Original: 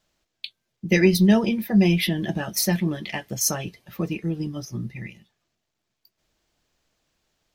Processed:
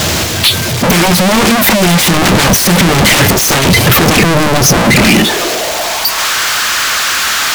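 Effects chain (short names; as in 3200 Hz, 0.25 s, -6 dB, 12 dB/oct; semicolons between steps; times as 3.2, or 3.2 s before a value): high-pass sweep 92 Hz -> 1300 Hz, 4.28–6.36; power-law curve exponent 0.35; sine folder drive 10 dB, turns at -8 dBFS; gain +3 dB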